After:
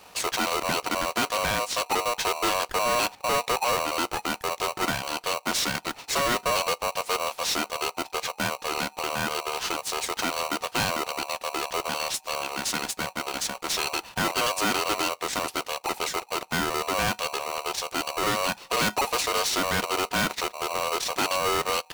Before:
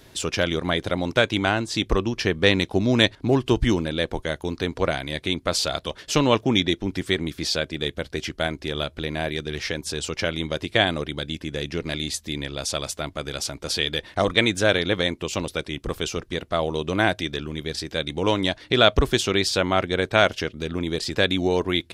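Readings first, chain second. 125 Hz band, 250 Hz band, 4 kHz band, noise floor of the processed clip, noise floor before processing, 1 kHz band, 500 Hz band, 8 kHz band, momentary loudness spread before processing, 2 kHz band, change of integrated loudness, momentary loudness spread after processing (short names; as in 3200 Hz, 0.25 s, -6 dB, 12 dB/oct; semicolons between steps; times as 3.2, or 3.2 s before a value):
-12.5 dB, -10.0 dB, -3.5 dB, -52 dBFS, -52 dBFS, +3.5 dB, -6.0 dB, +4.0 dB, 10 LU, -3.0 dB, -3.0 dB, 5 LU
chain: overloaded stage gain 21.5 dB; polarity switched at an audio rate 840 Hz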